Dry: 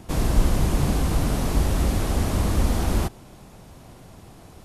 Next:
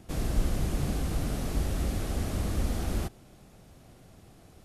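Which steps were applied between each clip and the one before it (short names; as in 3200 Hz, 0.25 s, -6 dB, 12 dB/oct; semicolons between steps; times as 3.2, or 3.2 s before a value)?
bell 970 Hz -7 dB 0.35 oct; gain -8 dB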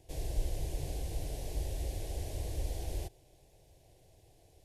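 fixed phaser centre 530 Hz, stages 4; gain -5.5 dB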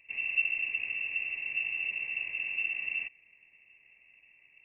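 inverted band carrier 2700 Hz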